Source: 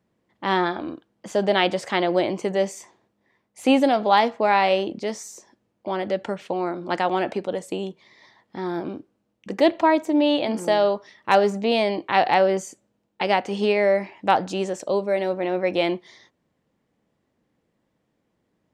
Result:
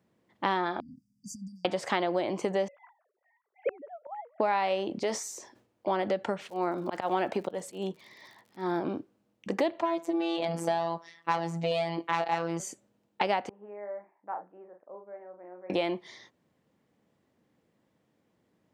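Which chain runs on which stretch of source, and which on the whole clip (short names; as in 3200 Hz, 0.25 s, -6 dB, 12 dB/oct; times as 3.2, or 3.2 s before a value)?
0.8–1.65 compressor 5:1, threshold -35 dBFS + brick-wall FIR band-stop 270–4600 Hz
2.68–4.4 sine-wave speech + LPF 1900 Hz 24 dB/oct + flipped gate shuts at -17 dBFS, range -28 dB
5.03–5.88 bell 180 Hz -14 dB 0.36 oct + sustainer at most 110 dB/s
6.46–8.79 auto swell 0.186 s + crackle 85/s -45 dBFS
9.82–12.6 tube stage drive 11 dB, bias 0.3 + robotiser 167 Hz
13.49–15.7 Bessel low-pass 850 Hz, order 8 + differentiator + doubler 39 ms -6 dB
whole clip: compressor 6:1, threshold -27 dBFS; HPF 76 Hz; dynamic EQ 950 Hz, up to +4 dB, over -43 dBFS, Q 0.93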